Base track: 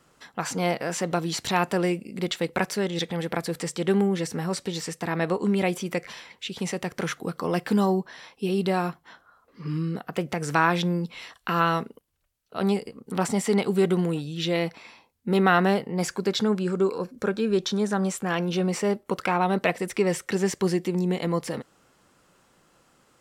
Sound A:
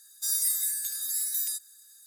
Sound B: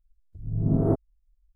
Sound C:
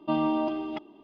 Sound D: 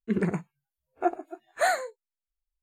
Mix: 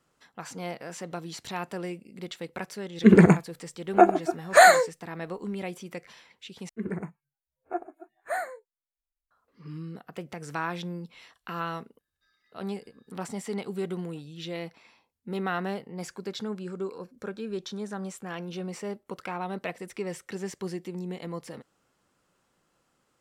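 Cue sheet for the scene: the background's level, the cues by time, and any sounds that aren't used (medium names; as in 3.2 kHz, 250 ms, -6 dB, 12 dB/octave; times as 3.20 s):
base track -10.5 dB
2.96 s: add D -3.5 dB + loudness maximiser +16.5 dB
6.69 s: replace with D -6.5 dB + high-order bell 4.4 kHz -10 dB
11.99 s: add A -16 dB + inverse Chebyshev low-pass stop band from 7.9 kHz, stop band 60 dB
not used: B, C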